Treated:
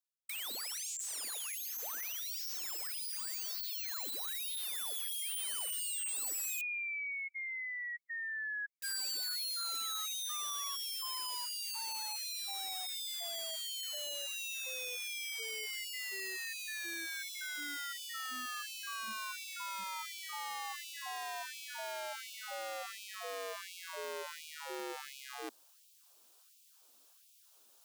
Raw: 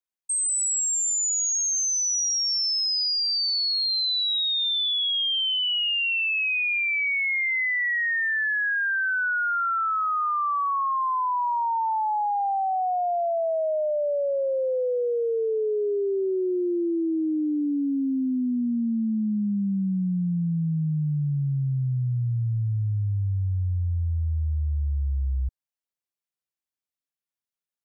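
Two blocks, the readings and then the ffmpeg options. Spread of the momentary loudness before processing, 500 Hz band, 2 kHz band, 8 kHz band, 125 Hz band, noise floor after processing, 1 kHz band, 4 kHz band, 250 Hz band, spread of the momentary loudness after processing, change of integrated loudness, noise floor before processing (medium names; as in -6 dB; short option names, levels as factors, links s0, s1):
5 LU, -22.0 dB, -14.5 dB, no reading, under -40 dB, -65 dBFS, -18.5 dB, -13.5 dB, -32.5 dB, 8 LU, -14.0 dB, under -85 dBFS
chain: -af "equalizer=f=2000:t=o:w=0.69:g=-13,areverse,acompressor=mode=upward:threshold=0.0355:ratio=2.5,areverse,aeval=exprs='(mod(25.1*val(0)+1,2)-1)/25.1':c=same,afftfilt=real='re*gte(b*sr/1024,210*pow(2300/210,0.5+0.5*sin(2*PI*1.4*pts/sr)))':imag='im*gte(b*sr/1024,210*pow(2300/210,0.5+0.5*sin(2*PI*1.4*pts/sr)))':win_size=1024:overlap=0.75,volume=0.447"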